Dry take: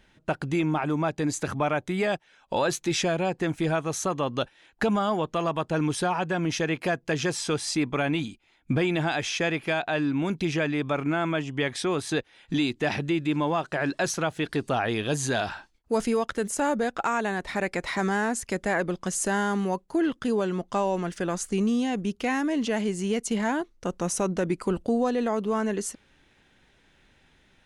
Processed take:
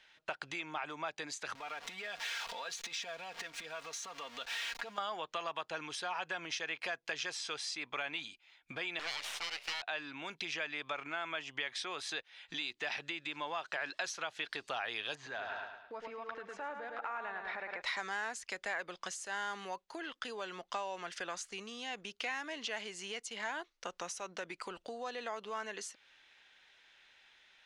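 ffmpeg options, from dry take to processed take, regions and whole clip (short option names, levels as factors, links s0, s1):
-filter_complex "[0:a]asettb=1/sr,asplit=3[s0][s1][s2];[s0]atrim=end=1.554[s3];[s1]atrim=start=1.55:end=4.98,asetpts=PTS-STARTPTS,afade=t=in:d=0.004:c=qsin,afade=t=out:st=3.426:d=0.004:c=qsin,aeval=exprs='val(0)+0.5*0.0251*sgn(val(0))':c=same,acompressor=threshold=0.0178:ratio=8:attack=3.2:release=140:knee=1:detection=peak,aecho=1:1:4.3:0.59,atrim=end_sample=151263[s4];[s2]atrim=start=4.976[s5];[s3][s4]acrossfade=d=0.004:c1=hsin:c2=qsin[s6];[s6][s5]acrossfade=d=0.004:c1=qsin:c2=hsin,asettb=1/sr,asplit=3[s7][s8][s9];[s7]atrim=end=8.994[s10];[s8]atrim=start=8.99:end=9.82,asetpts=PTS-STARTPTS,afade=t=in:d=0.004:c=qsin,afade=t=out:st=0.826:d=0.004:c=qsin,highshelf=f=3700:g=8.5,bandreject=f=60:t=h:w=6,bandreject=f=120:t=h:w=6,bandreject=f=180:t=h:w=6,bandreject=f=240:t=h:w=6,bandreject=f=300:t=h:w=6,bandreject=f=360:t=h:w=6,bandreject=f=420:t=h:w=6,aeval=exprs='abs(val(0))':c=same[s11];[s9]atrim=start=9.816[s12];[s10][s11]acrossfade=d=0.004:c1=hsin:c2=qsin[s13];[s13][s12]acrossfade=d=0.004:c1=qsin:c2=hsin,asettb=1/sr,asplit=3[s14][s15][s16];[s14]atrim=end=15.154[s17];[s15]atrim=start=15.15:end=17.82,asetpts=PTS-STARTPTS,afade=t=in:d=0.004:c=qsin,afade=t=out:st=2.666:d=0.004:c=qsin,lowpass=1800,aecho=1:1:107|214|321|428|535:0.422|0.194|0.0892|0.041|0.0189,atrim=end_sample=117747,acompressor=threshold=0.0316:ratio=6:attack=3.2:release=140:knee=1:detection=peak[s18];[s16]atrim=start=17.816[s19];[s17][s18]acrossfade=d=0.004:c1=hsin:c2=qsin[s20];[s20][s19]acrossfade=d=0.004:c1=qsin:c2=hsin,tiltshelf=f=1400:g=-6.5,acompressor=threshold=0.0251:ratio=6,acrossover=split=480 5700:gain=0.141 1 0.126[s21][s22][s23];[s21][s22][s23]amix=inputs=3:normalize=0,volume=0.841"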